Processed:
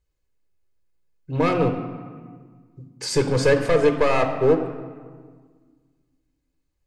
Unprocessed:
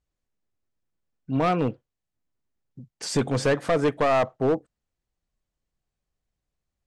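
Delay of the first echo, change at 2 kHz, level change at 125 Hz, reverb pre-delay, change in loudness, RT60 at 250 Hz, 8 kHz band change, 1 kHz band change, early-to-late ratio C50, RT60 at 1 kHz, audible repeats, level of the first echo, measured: none, +4.0 dB, +3.5 dB, 3 ms, +3.5 dB, 2.2 s, +2.5 dB, +1.0 dB, 8.5 dB, 1.6 s, none, none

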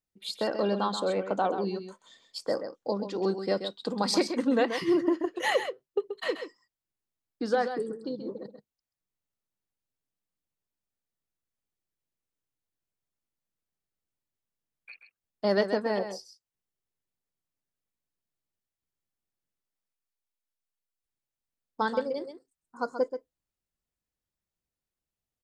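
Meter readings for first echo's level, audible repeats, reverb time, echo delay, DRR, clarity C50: -9.0 dB, 1, none, 0.131 s, none, none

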